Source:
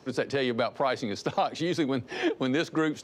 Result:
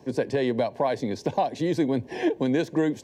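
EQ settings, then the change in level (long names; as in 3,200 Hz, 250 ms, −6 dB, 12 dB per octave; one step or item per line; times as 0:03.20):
Butterworth band-reject 1,300 Hz, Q 2.9
parametric band 3,600 Hz −9 dB 2.4 octaves
+4.0 dB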